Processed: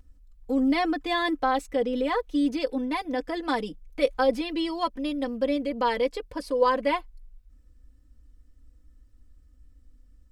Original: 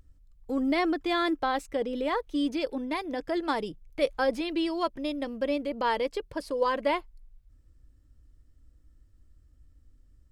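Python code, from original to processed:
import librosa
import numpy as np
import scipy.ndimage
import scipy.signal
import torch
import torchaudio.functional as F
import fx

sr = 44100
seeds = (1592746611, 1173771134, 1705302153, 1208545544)

y = x + 0.76 * np.pad(x, (int(4.0 * sr / 1000.0), 0))[:len(x)]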